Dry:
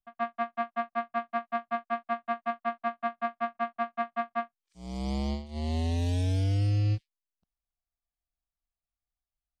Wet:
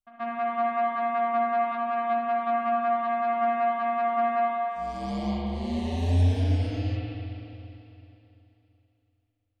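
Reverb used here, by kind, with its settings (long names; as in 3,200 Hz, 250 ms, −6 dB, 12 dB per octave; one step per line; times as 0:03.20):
spring reverb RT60 3.1 s, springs 34/55 ms, chirp 35 ms, DRR −5.5 dB
level −3 dB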